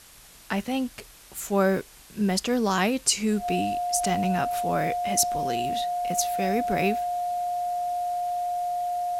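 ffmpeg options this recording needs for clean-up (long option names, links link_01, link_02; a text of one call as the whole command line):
ffmpeg -i in.wav -af "bandreject=frequency=710:width=30,afwtdn=0.0035" out.wav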